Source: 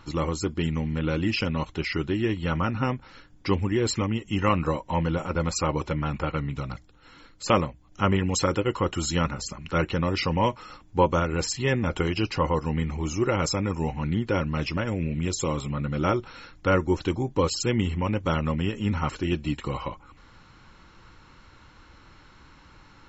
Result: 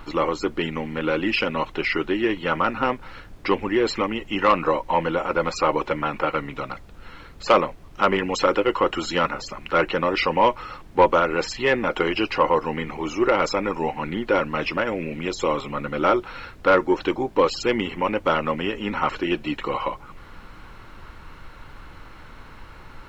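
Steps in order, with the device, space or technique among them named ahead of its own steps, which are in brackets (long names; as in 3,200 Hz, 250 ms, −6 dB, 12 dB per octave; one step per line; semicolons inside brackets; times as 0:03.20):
aircraft cabin announcement (band-pass filter 380–3,100 Hz; soft clipping −15 dBFS, distortion −18 dB; brown noise bed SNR 18 dB)
level +8.5 dB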